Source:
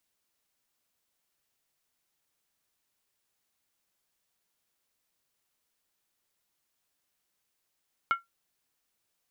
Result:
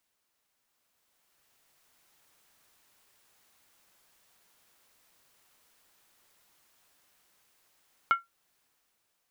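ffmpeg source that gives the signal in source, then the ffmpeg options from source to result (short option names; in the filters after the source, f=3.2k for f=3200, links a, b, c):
-f lavfi -i "aevalsrc='0.119*pow(10,-3*t/0.16)*sin(2*PI*1370*t)+0.0422*pow(10,-3*t/0.127)*sin(2*PI*2183.8*t)+0.015*pow(10,-3*t/0.109)*sin(2*PI*2926.3*t)+0.00531*pow(10,-3*t/0.106)*sin(2*PI*3145.5*t)+0.00188*pow(10,-3*t/0.098)*sin(2*PI*3634.6*t)':d=0.63:s=44100"
-af "equalizer=f=1.1k:t=o:w=2.5:g=4,dynaudnorm=f=310:g=9:m=12dB,alimiter=limit=-13.5dB:level=0:latency=1:release=480"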